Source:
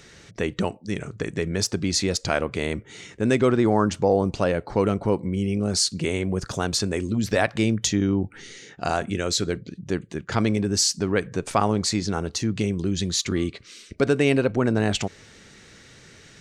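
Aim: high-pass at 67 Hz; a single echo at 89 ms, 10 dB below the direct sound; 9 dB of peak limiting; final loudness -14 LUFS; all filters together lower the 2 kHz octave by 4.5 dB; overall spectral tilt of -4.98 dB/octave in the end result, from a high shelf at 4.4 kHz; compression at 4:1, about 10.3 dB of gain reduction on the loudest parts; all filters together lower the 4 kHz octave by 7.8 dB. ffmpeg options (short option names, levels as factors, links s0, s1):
-af "highpass=67,equalizer=f=2000:t=o:g=-3.5,equalizer=f=4000:t=o:g=-7,highshelf=f=4400:g=-3.5,acompressor=threshold=0.0398:ratio=4,alimiter=limit=0.0631:level=0:latency=1,aecho=1:1:89:0.316,volume=11.2"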